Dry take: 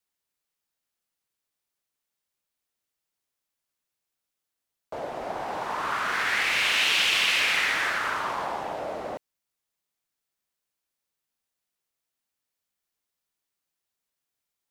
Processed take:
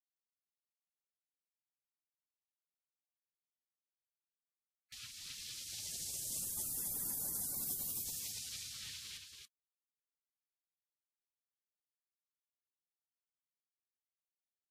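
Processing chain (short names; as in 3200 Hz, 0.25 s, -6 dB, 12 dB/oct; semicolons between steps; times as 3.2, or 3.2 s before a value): HPF 370 Hz 6 dB/oct; in parallel at -10 dB: hard clip -25 dBFS, distortion -9 dB; 7.54–8.04 on the sum: high shelf 6400 Hz +11 dB; spectral gate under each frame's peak -30 dB weak; echo 0.278 s -5 dB; gain +4 dB; Vorbis 48 kbps 44100 Hz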